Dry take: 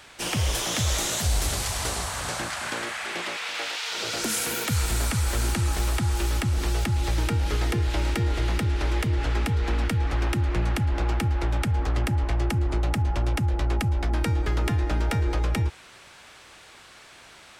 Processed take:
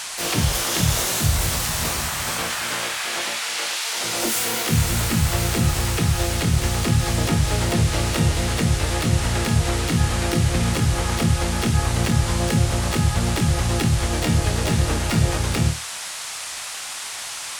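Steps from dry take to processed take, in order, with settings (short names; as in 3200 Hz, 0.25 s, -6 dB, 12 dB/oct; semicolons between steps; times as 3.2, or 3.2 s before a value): flutter echo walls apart 4.5 m, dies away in 0.27 s; harmoniser +7 st -2 dB, +12 st -4 dB; band noise 670–10000 Hz -32 dBFS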